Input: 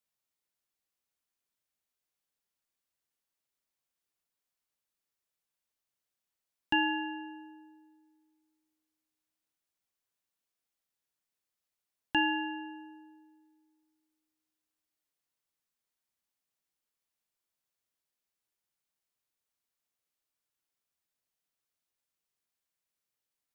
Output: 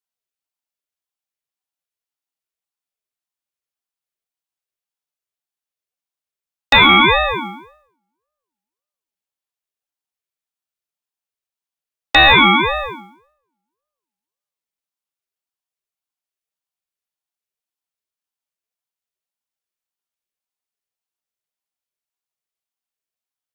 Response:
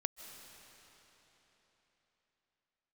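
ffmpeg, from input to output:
-af "equalizer=frequency=125:width_type=o:width=1:gain=11,equalizer=frequency=250:width_type=o:width=1:gain=-11,equalizer=frequency=500:width_type=o:width=1:gain=3,equalizer=frequency=1000:width_type=o:width=1:gain=-9,equalizer=frequency=2000:width_type=o:width=1:gain=4,agate=range=-33dB:threshold=-51dB:ratio=3:detection=peak,apsyclip=34.5dB,aeval=exprs='val(0)*sin(2*PI*710*n/s+710*0.3/1.8*sin(2*PI*1.8*n/s))':channel_layout=same,volume=-1.5dB"

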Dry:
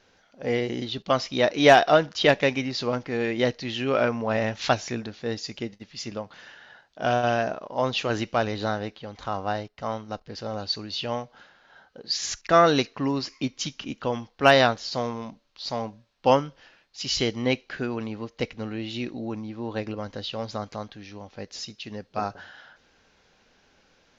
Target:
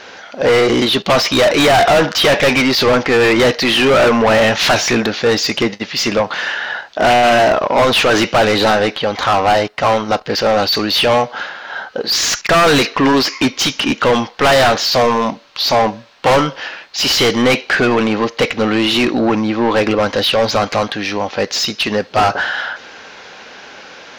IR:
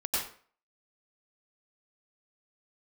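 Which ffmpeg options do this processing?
-filter_complex "[0:a]asplit=2[link_01][link_02];[link_02]highpass=frequency=720:poles=1,volume=36dB,asoftclip=type=tanh:threshold=-2.5dB[link_03];[link_01][link_03]amix=inputs=2:normalize=0,lowpass=frequency=3000:poles=1,volume=-6dB,volume=8dB,asoftclip=hard,volume=-8dB"

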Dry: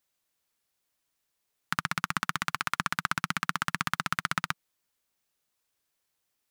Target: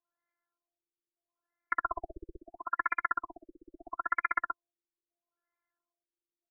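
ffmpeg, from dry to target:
ffmpeg -i in.wav -filter_complex "[0:a]aemphasis=mode=production:type=riaa,asplit=3[link_01][link_02][link_03];[link_01]afade=type=out:start_time=1.84:duration=0.02[link_04];[link_02]acontrast=58,afade=type=in:start_time=1.84:duration=0.02,afade=type=out:start_time=2.39:duration=0.02[link_05];[link_03]afade=type=in:start_time=2.39:duration=0.02[link_06];[link_04][link_05][link_06]amix=inputs=3:normalize=0,afftfilt=real='hypot(re,im)*cos(PI*b)':imag='0':win_size=512:overlap=0.75,aresample=22050,aresample=44100,afftfilt=real='re*lt(b*sr/1024,510*pow(2400/510,0.5+0.5*sin(2*PI*0.76*pts/sr)))':imag='im*lt(b*sr/1024,510*pow(2400/510,0.5+0.5*sin(2*PI*0.76*pts/sr)))':win_size=1024:overlap=0.75,volume=2.5dB" out.wav

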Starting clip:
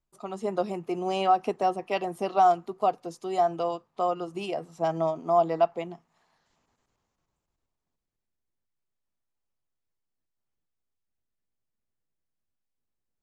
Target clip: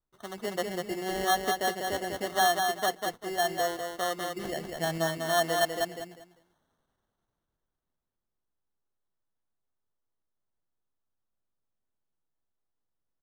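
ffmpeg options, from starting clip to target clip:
ffmpeg -i in.wav -filter_complex "[0:a]asettb=1/sr,asplit=3[link_01][link_02][link_03];[link_01]atrim=end=4.434[link_04];[link_02]atrim=start=4.43:end=4.98,asetpts=PTS-STARTPTS,afade=type=in:duration=0.004:curve=qsin,afade=type=out:start_time=0.546:duration=0.004:curve=qsin,bass=frequency=250:gain=6,treble=frequency=4000:gain=13[link_05];[link_03]atrim=start=4.976[link_06];[link_04][link_05]acrossfade=duration=0.004:curve1=hsin:curve2=qsin[link_07];[link_07][link_06]acrossfade=duration=0.004:curve1=qsin:curve2=hsin,acrusher=samples=18:mix=1:aa=0.000001,asplit=2[link_08][link_09];[link_09]aecho=0:1:197|394|591:0.596|0.143|0.0343[link_10];[link_08][link_10]amix=inputs=2:normalize=0,volume=-4.5dB" out.wav

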